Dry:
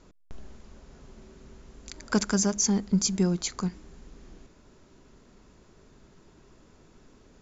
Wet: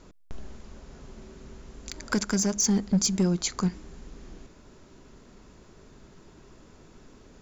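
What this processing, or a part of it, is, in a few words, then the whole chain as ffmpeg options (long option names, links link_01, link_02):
limiter into clipper: -af "alimiter=limit=-16.5dB:level=0:latency=1:release=496,asoftclip=type=hard:threshold=-21dB,volume=4dB"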